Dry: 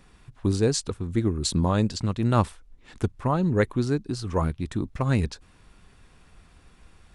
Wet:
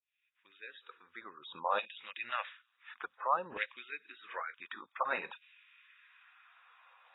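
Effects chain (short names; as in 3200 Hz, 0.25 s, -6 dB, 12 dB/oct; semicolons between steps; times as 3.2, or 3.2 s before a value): opening faded in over 2.09 s; on a send: thin delay 0.1 s, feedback 55%, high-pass 4800 Hz, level -19 dB; on the sum: LFO high-pass saw down 0.56 Hz 910–2700 Hz; dynamic EQ 990 Hz, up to -5 dB, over -38 dBFS, Q 3.5; spectral gate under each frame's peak -20 dB strong; small resonant body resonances 530/2500 Hz, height 9 dB, ringing for 50 ms; gain -4 dB; AAC 16 kbps 16000 Hz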